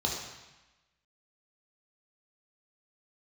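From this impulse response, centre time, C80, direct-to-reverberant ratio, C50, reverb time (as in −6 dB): 52 ms, 5.0 dB, −2.0 dB, 3.0 dB, 1.1 s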